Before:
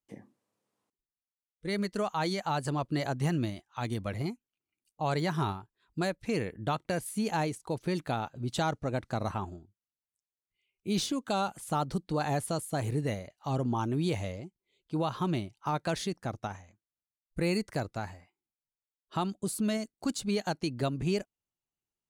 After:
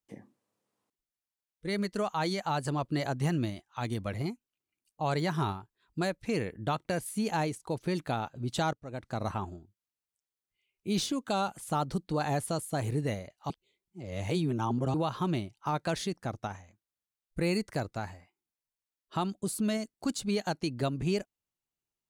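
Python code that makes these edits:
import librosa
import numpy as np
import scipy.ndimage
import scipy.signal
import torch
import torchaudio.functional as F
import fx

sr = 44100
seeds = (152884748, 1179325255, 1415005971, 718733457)

y = fx.edit(x, sr, fx.fade_in_from(start_s=8.73, length_s=0.55, floor_db=-23.0),
    fx.reverse_span(start_s=13.5, length_s=1.44), tone=tone)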